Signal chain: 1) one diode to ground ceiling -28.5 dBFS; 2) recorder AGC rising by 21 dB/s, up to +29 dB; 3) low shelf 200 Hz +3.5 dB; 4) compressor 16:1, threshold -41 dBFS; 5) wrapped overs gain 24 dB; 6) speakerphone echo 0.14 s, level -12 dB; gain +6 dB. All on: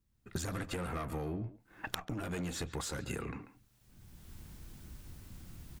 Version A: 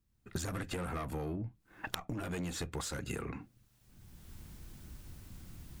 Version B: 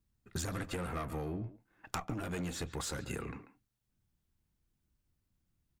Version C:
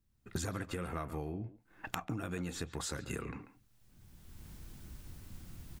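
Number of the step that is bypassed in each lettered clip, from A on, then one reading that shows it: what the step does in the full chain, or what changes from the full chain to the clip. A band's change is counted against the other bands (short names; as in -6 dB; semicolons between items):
6, echo-to-direct -18.0 dB to none; 2, momentary loudness spread change -7 LU; 1, loudness change -2.0 LU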